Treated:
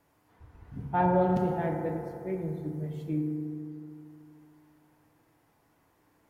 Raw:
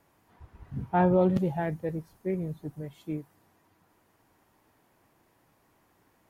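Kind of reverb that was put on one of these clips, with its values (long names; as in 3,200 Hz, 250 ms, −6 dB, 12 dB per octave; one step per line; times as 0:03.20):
feedback delay network reverb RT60 2.7 s, high-frequency decay 0.3×, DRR 1.5 dB
level −3.5 dB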